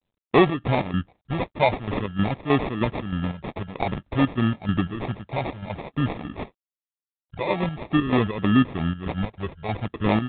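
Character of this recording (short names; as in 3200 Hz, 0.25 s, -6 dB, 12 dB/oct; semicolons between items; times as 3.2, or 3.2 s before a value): chopped level 3.2 Hz, depth 60%, duty 60%; phasing stages 12, 0.5 Hz, lowest notch 270–1900 Hz; aliases and images of a low sample rate 1500 Hz, jitter 0%; G.726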